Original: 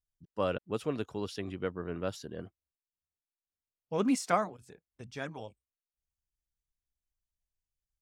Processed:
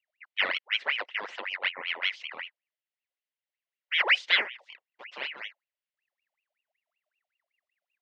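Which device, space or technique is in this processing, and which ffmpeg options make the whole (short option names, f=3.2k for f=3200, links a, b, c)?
voice changer toy: -af "aeval=exprs='val(0)*sin(2*PI*1700*n/s+1700*0.65/5.3*sin(2*PI*5.3*n/s))':c=same,highpass=480,equalizer=f=550:t=q:w=4:g=4,equalizer=f=800:t=q:w=4:g=-3,equalizer=f=1.2k:t=q:w=4:g=-5,equalizer=f=2k:t=q:w=4:g=8,equalizer=f=2.9k:t=q:w=4:g=6,lowpass=f=4.7k:w=0.5412,lowpass=f=4.7k:w=1.3066,volume=3dB"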